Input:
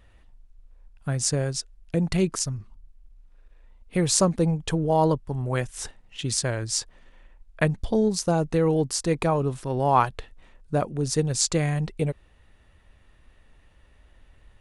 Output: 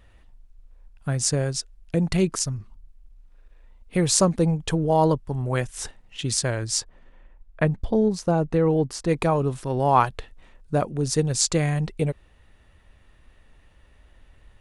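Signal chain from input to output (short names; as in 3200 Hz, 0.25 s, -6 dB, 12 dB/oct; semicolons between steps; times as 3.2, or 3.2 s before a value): 6.8–9.08 high shelf 2400 Hz -> 4000 Hz -12 dB; gain +1.5 dB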